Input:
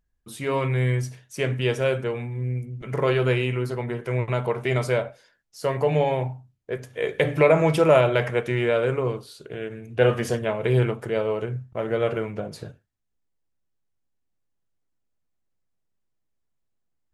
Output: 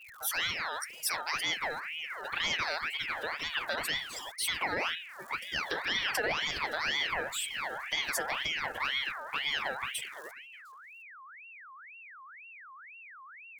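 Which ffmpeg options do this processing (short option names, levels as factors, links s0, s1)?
-filter_complex "[0:a]aeval=exprs='val(0)+0.5*0.0316*sgn(val(0))':c=same,asplit=2[s0][s1];[s1]aecho=0:1:891:0.126[s2];[s0][s2]amix=inputs=2:normalize=0,afftdn=nr=20:nf=-34,alimiter=limit=0.2:level=0:latency=1:release=60,aeval=exprs='val(0)*gte(abs(val(0)),0.00224)':c=same,adynamicequalizer=threshold=0.00891:dfrequency=230:dqfactor=2.1:tfrequency=230:tqfactor=2.1:attack=5:release=100:ratio=0.375:range=3:mode=boostabove:tftype=bell,acompressor=threshold=0.0316:ratio=1.5,asetrate=55566,aresample=44100,bass=f=250:g=-10,treble=f=4000:g=13,aeval=exprs='val(0)*sin(2*PI*1900*n/s+1900*0.45/2*sin(2*PI*2*n/s))':c=same,volume=0.75"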